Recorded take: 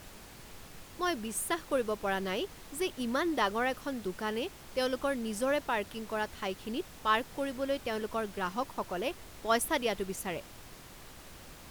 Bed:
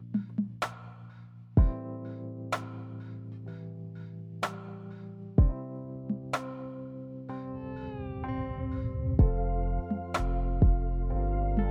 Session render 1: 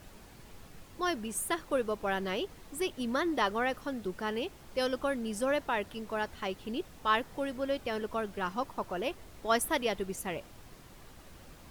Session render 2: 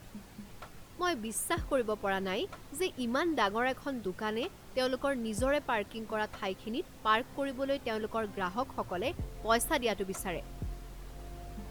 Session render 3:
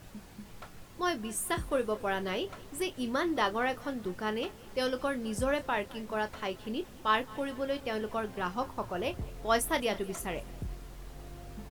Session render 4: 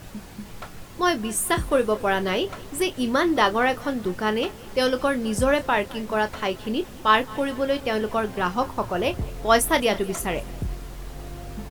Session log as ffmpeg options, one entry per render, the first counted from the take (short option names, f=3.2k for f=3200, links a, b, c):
-af "afftdn=nr=6:nf=-51"
-filter_complex "[1:a]volume=-17.5dB[a];[0:a][a]amix=inputs=2:normalize=0"
-filter_complex "[0:a]asplit=2[a][b];[b]adelay=28,volume=-11dB[c];[a][c]amix=inputs=2:normalize=0,aecho=1:1:213|426|639|852:0.0794|0.0421|0.0223|0.0118"
-af "volume=9.5dB"